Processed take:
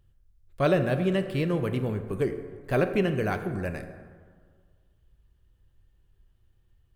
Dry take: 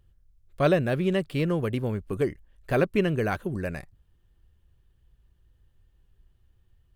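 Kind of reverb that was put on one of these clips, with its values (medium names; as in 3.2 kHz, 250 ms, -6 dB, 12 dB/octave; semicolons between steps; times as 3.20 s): plate-style reverb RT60 1.8 s, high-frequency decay 0.45×, DRR 7.5 dB; trim -1.5 dB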